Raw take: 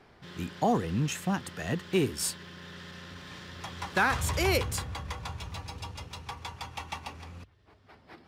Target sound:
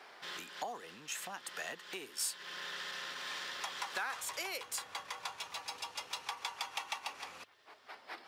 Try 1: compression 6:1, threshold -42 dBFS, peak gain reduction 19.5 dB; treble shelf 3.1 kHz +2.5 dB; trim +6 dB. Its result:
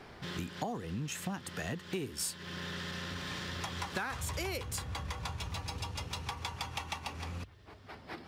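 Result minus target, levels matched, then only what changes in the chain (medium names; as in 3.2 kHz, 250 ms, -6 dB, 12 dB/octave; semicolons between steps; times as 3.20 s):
500 Hz band +4.5 dB
add after compression: high-pass 660 Hz 12 dB/octave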